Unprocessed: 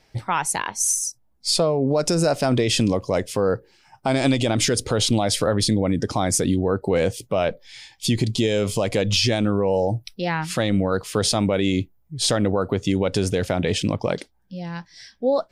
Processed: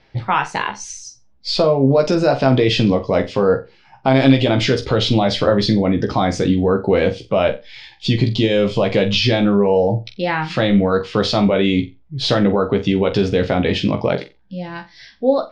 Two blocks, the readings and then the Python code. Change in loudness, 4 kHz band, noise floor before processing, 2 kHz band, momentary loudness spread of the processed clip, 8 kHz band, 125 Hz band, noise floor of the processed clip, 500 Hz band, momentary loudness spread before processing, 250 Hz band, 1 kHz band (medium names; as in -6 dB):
+5.0 dB, +3.0 dB, -61 dBFS, +5.5 dB, 10 LU, -11.5 dB, +4.5 dB, -51 dBFS, +5.5 dB, 8 LU, +6.0 dB, +5.5 dB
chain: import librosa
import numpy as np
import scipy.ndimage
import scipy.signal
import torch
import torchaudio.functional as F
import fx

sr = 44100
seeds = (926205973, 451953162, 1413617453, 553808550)

y = scipy.signal.sosfilt(scipy.signal.butter(4, 4300.0, 'lowpass', fs=sr, output='sos'), x)
y = fx.doubler(y, sr, ms=15.0, db=-5.5)
y = fx.room_flutter(y, sr, wall_m=7.6, rt60_s=0.24)
y = y * 10.0 ** (4.0 / 20.0)